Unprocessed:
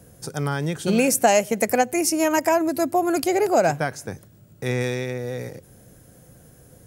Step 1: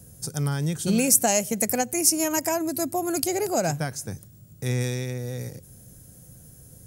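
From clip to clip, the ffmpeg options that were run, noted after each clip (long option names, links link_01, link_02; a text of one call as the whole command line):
ffmpeg -i in.wav -af "bass=frequency=250:gain=10,treble=frequency=4000:gain=13,volume=-7.5dB" out.wav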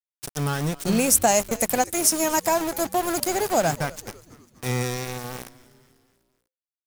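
ffmpeg -i in.wav -filter_complex "[0:a]adynamicequalizer=threshold=0.00891:dfrequency=1000:dqfactor=1:tfrequency=1000:tqfactor=1:attack=5:release=100:ratio=0.375:range=3.5:mode=boostabove:tftype=bell,aeval=exprs='val(0)*gte(abs(val(0)),0.0501)':channel_layout=same,asplit=5[link_01][link_02][link_03][link_04][link_05];[link_02]adelay=247,afreqshift=-130,volume=-20.5dB[link_06];[link_03]adelay=494,afreqshift=-260,volume=-25.7dB[link_07];[link_04]adelay=741,afreqshift=-390,volume=-30.9dB[link_08];[link_05]adelay=988,afreqshift=-520,volume=-36.1dB[link_09];[link_01][link_06][link_07][link_08][link_09]amix=inputs=5:normalize=0" out.wav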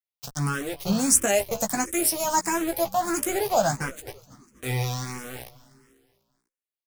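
ffmpeg -i in.wav -filter_complex "[0:a]asplit=2[link_01][link_02];[link_02]adelay=15,volume=-6dB[link_03];[link_01][link_03]amix=inputs=2:normalize=0,asplit=2[link_04][link_05];[link_05]afreqshift=1.5[link_06];[link_04][link_06]amix=inputs=2:normalize=1" out.wav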